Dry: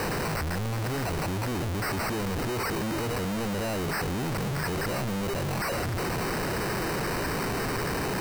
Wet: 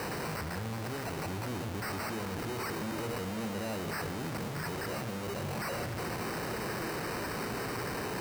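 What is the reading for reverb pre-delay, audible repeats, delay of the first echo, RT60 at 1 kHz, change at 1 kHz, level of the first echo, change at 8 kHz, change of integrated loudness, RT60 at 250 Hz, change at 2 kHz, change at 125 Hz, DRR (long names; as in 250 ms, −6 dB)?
12 ms, no echo audible, no echo audible, 2.0 s, −6.0 dB, no echo audible, −6.5 dB, −6.5 dB, 1.9 s, −6.0 dB, −8.0 dB, 6.5 dB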